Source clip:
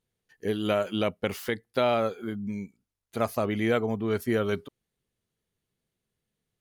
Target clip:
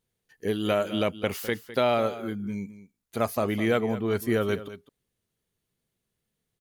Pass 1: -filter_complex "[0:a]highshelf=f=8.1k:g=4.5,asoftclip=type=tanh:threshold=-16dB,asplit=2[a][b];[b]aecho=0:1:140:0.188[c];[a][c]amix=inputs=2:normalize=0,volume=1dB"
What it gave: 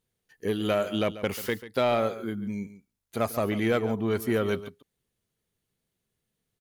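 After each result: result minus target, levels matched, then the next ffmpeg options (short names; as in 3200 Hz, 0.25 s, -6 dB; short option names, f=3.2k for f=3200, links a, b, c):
soft clip: distortion +16 dB; echo 66 ms early
-filter_complex "[0:a]highshelf=f=8.1k:g=4.5,asoftclip=type=tanh:threshold=-7dB,asplit=2[a][b];[b]aecho=0:1:140:0.188[c];[a][c]amix=inputs=2:normalize=0,volume=1dB"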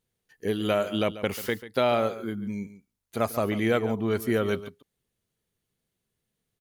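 echo 66 ms early
-filter_complex "[0:a]highshelf=f=8.1k:g=4.5,asoftclip=type=tanh:threshold=-7dB,asplit=2[a][b];[b]aecho=0:1:206:0.188[c];[a][c]amix=inputs=2:normalize=0,volume=1dB"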